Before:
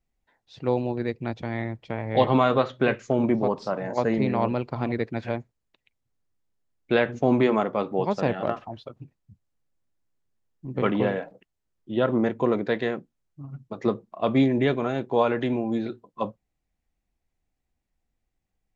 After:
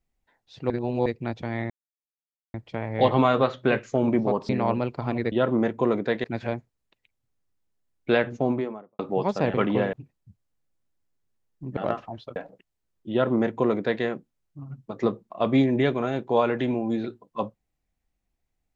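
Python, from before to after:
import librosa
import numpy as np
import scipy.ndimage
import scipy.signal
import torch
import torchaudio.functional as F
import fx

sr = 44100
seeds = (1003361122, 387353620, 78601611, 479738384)

y = fx.studio_fade_out(x, sr, start_s=6.97, length_s=0.84)
y = fx.edit(y, sr, fx.reverse_span(start_s=0.7, length_s=0.36),
    fx.insert_silence(at_s=1.7, length_s=0.84),
    fx.cut(start_s=3.65, length_s=0.58),
    fx.swap(start_s=8.36, length_s=0.59, other_s=10.79, other_length_s=0.39),
    fx.duplicate(start_s=11.93, length_s=0.92, to_s=5.06), tone=tone)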